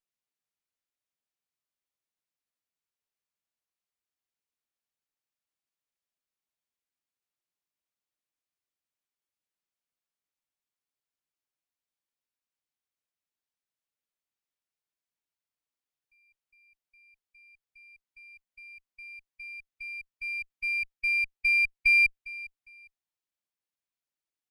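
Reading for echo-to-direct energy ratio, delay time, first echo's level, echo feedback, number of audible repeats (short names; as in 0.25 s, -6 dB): -19.5 dB, 0.405 s, -20.0 dB, 26%, 2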